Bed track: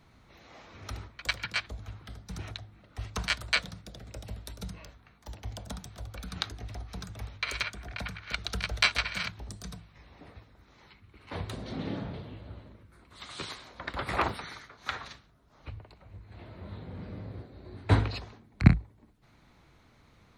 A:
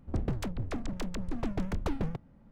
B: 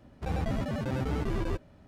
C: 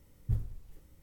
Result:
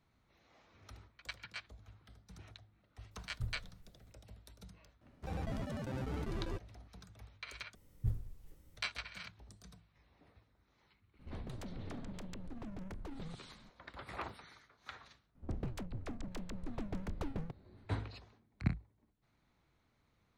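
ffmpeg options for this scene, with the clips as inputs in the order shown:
-filter_complex "[3:a]asplit=2[a][b];[1:a]asplit=2[c][d];[0:a]volume=-15dB[e];[c]acompressor=threshold=-40dB:ratio=4:attack=0.38:release=34:knee=1:detection=peak[f];[e]asplit=2[g][h];[g]atrim=end=7.754[i];[b]atrim=end=1.02,asetpts=PTS-STARTPTS,volume=-4dB[j];[h]atrim=start=8.766[k];[a]atrim=end=1.02,asetpts=PTS-STARTPTS,volume=-9.5dB,afade=t=in:d=0.004:c=hsin,afade=t=out:st=1.016:d=0.004:c=hsin,adelay=3110[l];[2:a]atrim=end=1.87,asetpts=PTS-STARTPTS,volume=-9dB,afade=t=in:d=0.004:c=hsin,afade=t=out:st=1.866:d=0.004:c=hsin,adelay=220941S[m];[f]atrim=end=2.51,asetpts=PTS-STARTPTS,volume=-3.5dB,afade=t=in:d=0.004:c=hsin,afade=t=out:st=2.506:d=0.004:c=hsin,adelay=11190[n];[d]atrim=end=2.51,asetpts=PTS-STARTPTS,volume=-8.5dB,afade=t=in:d=0.004:c=hsin,afade=t=out:st=2.506:d=0.004:c=hsin,adelay=15350[o];[i][j]acrossfade=d=0.004:c1=hsin:c2=hsin[p];[p][k]acrossfade=d=0.004:c1=hsin:c2=hsin[q];[q][l][m][n][o]amix=inputs=5:normalize=0"

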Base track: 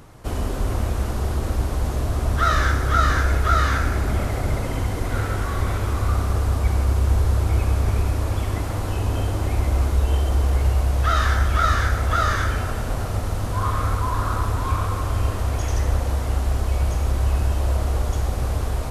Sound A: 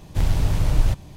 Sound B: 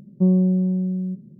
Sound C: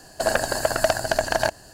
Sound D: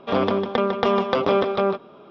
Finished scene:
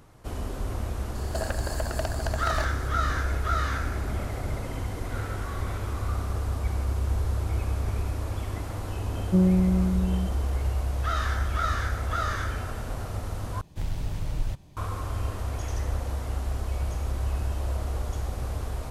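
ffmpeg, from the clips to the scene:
-filter_complex "[0:a]volume=-8dB[a];[3:a]acompressor=threshold=-29dB:ratio=3:attack=1.6:release=893:knee=1:detection=peak[b];[a]asplit=2[c][d];[c]atrim=end=13.614[e];[1:a]atrim=end=1.16,asetpts=PTS-STARTPTS,volume=-10.5dB[f];[d]atrim=start=14.766[g];[b]atrim=end=1.73,asetpts=PTS-STARTPTS,afade=t=in:d=0.004:c=hsin,afade=t=out:st=1.726:d=0.004:c=hsin,adelay=1150[h];[2:a]atrim=end=1.39,asetpts=PTS-STARTPTS,volume=-3.5dB,afade=t=in:d=0.004:c=hsin,afade=t=out:st=1.386:d=0.004:c=hsin,adelay=9120[i];[e][f]acrossfade=d=0.004:c1=hsin:c2=hsin[j];[j][g]acrossfade=d=0.004:c1=hsin:c2=hsin[k];[k][h][i]amix=inputs=3:normalize=0"

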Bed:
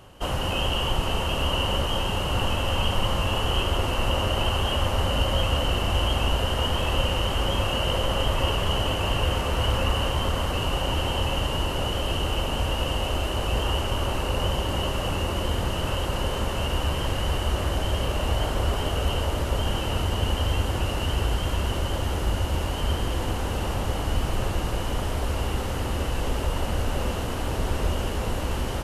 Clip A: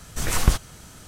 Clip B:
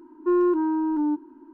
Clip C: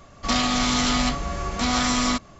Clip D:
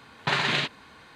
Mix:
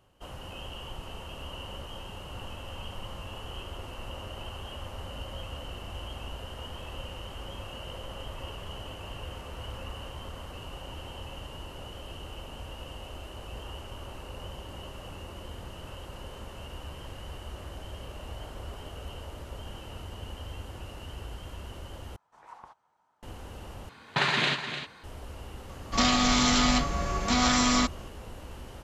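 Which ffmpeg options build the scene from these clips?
-filter_complex "[0:a]volume=-16dB[a];[1:a]bandpass=f=910:t=q:w=6.2:csg=0[b];[4:a]aecho=1:1:300:0.335[c];[a]asplit=3[d][e][f];[d]atrim=end=22.164[g];[b]atrim=end=1.07,asetpts=PTS-STARTPTS,volume=-9.5dB[h];[e]atrim=start=23.226:end=23.894[i];[c]atrim=end=1.15,asetpts=PTS-STARTPTS,volume=-1dB[j];[f]atrim=start=25.036[k];[3:a]atrim=end=2.39,asetpts=PTS-STARTPTS,volume=-1.5dB,afade=t=in:d=0.004:c=hsin,afade=t=out:st=2.386:d=0.004:c=hsin,adelay=25690[l];[g][h]acrossfade=d=0.004:c1=hsin:c2=hsin[m];[m][i]acrossfade=d=0.004:c1=hsin:c2=hsin[n];[n][j]acrossfade=d=0.004:c1=hsin:c2=hsin[o];[o][k]acrossfade=d=0.004:c1=hsin:c2=hsin[p];[p][l]amix=inputs=2:normalize=0"

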